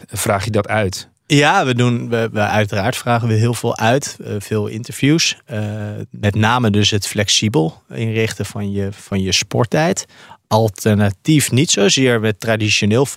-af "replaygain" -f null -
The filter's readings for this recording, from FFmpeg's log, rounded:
track_gain = -4.1 dB
track_peak = 0.565